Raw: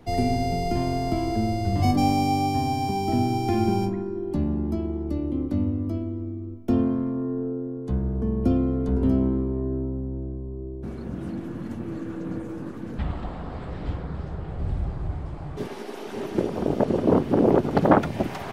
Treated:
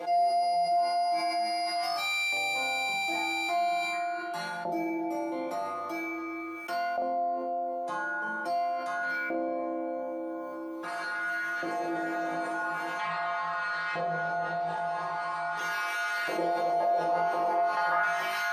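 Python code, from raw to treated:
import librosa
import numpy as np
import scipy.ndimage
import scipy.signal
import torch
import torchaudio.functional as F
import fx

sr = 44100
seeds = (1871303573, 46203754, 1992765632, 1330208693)

y = fx.high_shelf(x, sr, hz=6200.0, db=-6.0)
y = fx.stiff_resonator(y, sr, f0_hz=170.0, decay_s=0.57, stiffness=0.002)
y = fx.room_flutter(y, sr, wall_m=3.2, rt60_s=0.71)
y = fx.filter_lfo_highpass(y, sr, shape='saw_up', hz=0.43, low_hz=530.0, high_hz=1500.0, q=2.1)
y = fx.doubler(y, sr, ms=42.0, db=-3.0)
y = fx.env_flatten(y, sr, amount_pct=70)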